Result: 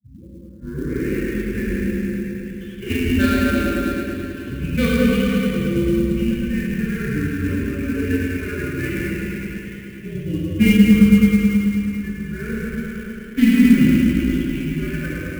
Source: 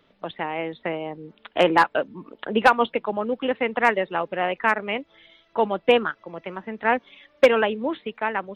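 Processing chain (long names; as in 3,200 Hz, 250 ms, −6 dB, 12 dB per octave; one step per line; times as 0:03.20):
turntable start at the beginning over 0.60 s
Butterworth low-pass 5,100 Hz 48 dB per octave
output level in coarse steps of 15 dB
frequency shifter −280 Hz
phase-vocoder stretch with locked phases 1.8×
Butterworth band-reject 840 Hz, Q 0.57
notch comb filter 650 Hz
delay with a low-pass on its return 108 ms, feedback 74%, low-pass 2,400 Hz, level −4 dB
dense smooth reverb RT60 3.3 s, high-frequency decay 0.95×, DRR −8 dB
converter with an unsteady clock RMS 0.021 ms
level +1.5 dB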